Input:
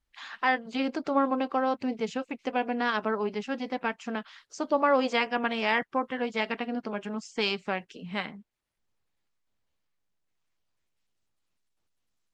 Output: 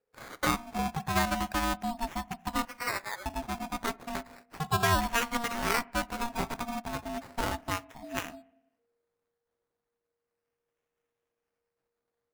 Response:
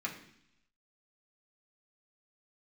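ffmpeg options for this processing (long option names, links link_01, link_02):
-filter_complex "[0:a]asettb=1/sr,asplit=3[link_01][link_02][link_03];[link_01]atrim=end=2.654[link_04];[link_02]atrim=start=2.65:end=3.26,asetpts=PTS-STARTPTS,afade=type=in:duration=0.004:curve=qsin,afade=type=out:start_time=0.606:duration=0.004:curve=qsin,highpass=frequency=1100:width=0.5412,highpass=frequency=1100:width=1.3066[link_05];[link_03]atrim=start=3.256[link_06];[link_04][link_05]acrossfade=duration=0.004:curve1=hsin:curve2=qsin[link_07];[link_07][link_06]acrossfade=duration=0.004:curve1=qsin:curve2=hsin,acrusher=samples=14:mix=1:aa=0.000001:lfo=1:lforange=8.4:lforate=0.34,asplit=2[link_08][link_09];[1:a]atrim=start_sample=2205,lowpass=2300[link_10];[link_09][link_10]afir=irnorm=-1:irlink=0,volume=-17dB[link_11];[link_08][link_11]amix=inputs=2:normalize=0,aeval=exprs='val(0)*sin(2*PI*470*n/s)':channel_layout=same"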